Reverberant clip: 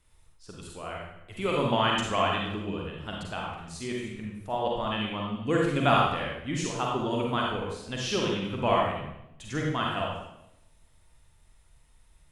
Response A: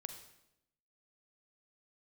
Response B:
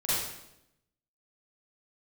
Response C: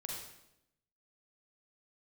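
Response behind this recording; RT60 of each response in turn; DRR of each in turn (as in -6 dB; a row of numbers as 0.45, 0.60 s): C; 0.85, 0.85, 0.85 s; 6.5, -12.0, -2.0 dB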